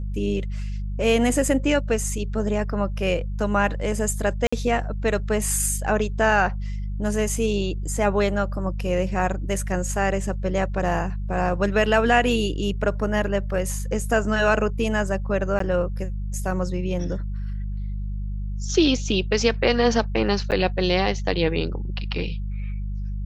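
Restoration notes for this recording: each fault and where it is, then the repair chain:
hum 50 Hz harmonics 4 -28 dBFS
4.47–4.53 gap 55 ms
15.59–15.6 gap 13 ms
20.51–20.52 gap 8.6 ms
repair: de-hum 50 Hz, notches 4; interpolate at 4.47, 55 ms; interpolate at 15.59, 13 ms; interpolate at 20.51, 8.6 ms

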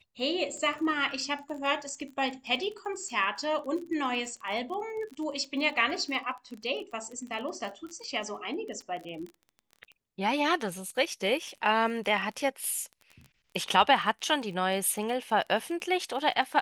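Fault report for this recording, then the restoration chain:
crackle 25/s -37 dBFS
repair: de-click

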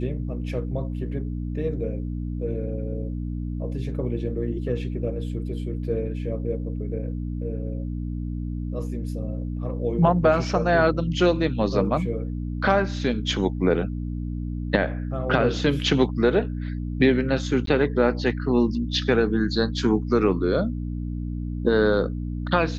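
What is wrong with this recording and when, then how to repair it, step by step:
hum 60 Hz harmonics 5 -29 dBFS
17.66–17.67 gap 13 ms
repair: de-hum 60 Hz, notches 5; interpolate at 17.66, 13 ms

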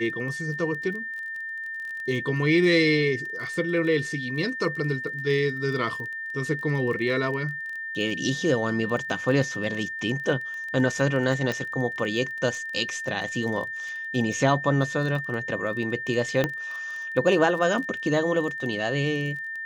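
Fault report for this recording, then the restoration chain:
crackle 20/s -33 dBFS
tone 1800 Hz -31 dBFS
11.52 pop -15 dBFS
16.44 pop -10 dBFS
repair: de-click; notch 1800 Hz, Q 30

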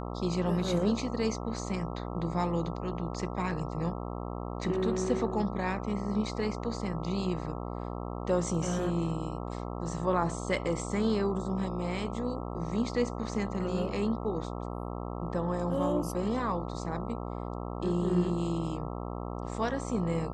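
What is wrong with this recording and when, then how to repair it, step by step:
buzz 60 Hz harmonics 22 -37 dBFS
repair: de-hum 60 Hz, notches 22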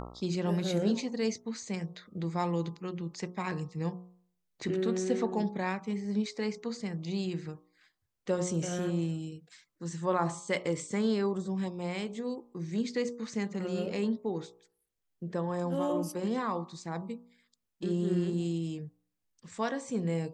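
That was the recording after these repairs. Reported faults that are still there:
none

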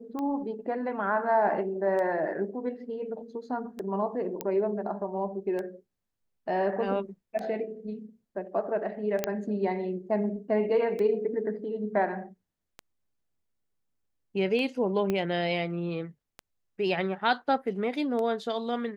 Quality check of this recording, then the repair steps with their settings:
tick 33 1/3 rpm -23 dBFS
4.41 pop -15 dBFS
9.24 pop -11 dBFS
15.1 pop -16 dBFS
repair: de-click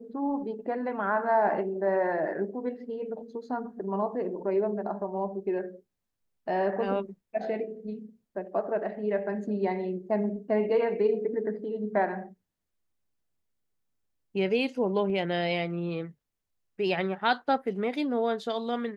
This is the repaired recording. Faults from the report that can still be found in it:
15.1 pop

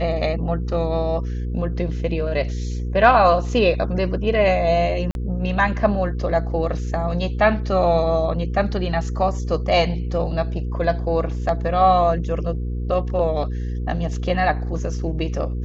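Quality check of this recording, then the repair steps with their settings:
hum 60 Hz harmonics 8 -25 dBFS
5.11–5.15 gap 41 ms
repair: de-hum 60 Hz, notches 8; interpolate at 5.11, 41 ms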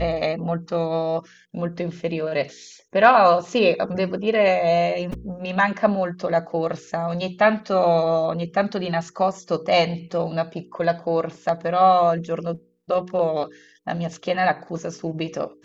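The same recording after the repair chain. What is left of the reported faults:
none

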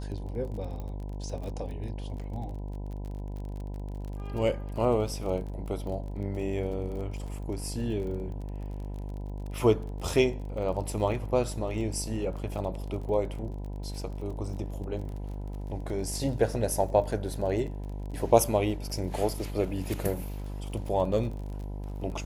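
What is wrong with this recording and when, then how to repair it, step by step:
buzz 50 Hz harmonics 20 -36 dBFS
crackle 31/s -38 dBFS
0.8 pop -27 dBFS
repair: de-click; de-hum 50 Hz, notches 20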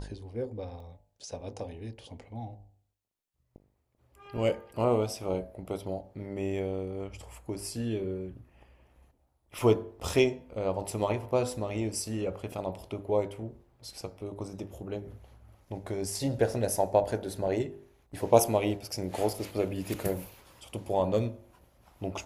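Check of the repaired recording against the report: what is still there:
0.8 pop

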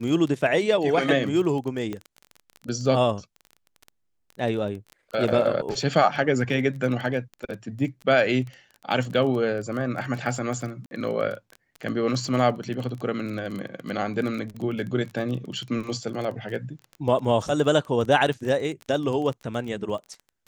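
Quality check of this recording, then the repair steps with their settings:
crackle 22/s -30 dBFS
1.93 pop -19 dBFS
10.86–10.91 gap 51 ms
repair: de-click; interpolate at 10.86, 51 ms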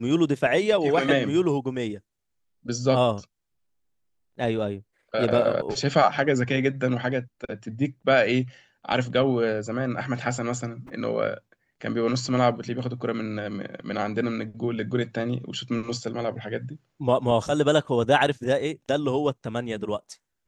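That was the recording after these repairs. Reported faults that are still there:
none

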